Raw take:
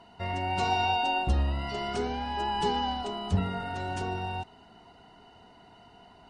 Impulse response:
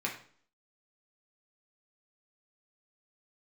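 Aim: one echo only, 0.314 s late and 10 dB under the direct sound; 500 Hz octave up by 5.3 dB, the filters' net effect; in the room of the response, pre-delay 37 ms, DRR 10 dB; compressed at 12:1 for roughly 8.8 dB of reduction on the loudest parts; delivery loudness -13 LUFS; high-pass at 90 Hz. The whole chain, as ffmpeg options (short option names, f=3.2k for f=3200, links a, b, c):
-filter_complex "[0:a]highpass=90,equalizer=f=500:t=o:g=7.5,acompressor=threshold=-29dB:ratio=12,aecho=1:1:314:0.316,asplit=2[a][b];[1:a]atrim=start_sample=2205,adelay=37[c];[b][c]afir=irnorm=-1:irlink=0,volume=-15dB[d];[a][d]amix=inputs=2:normalize=0,volume=20.5dB"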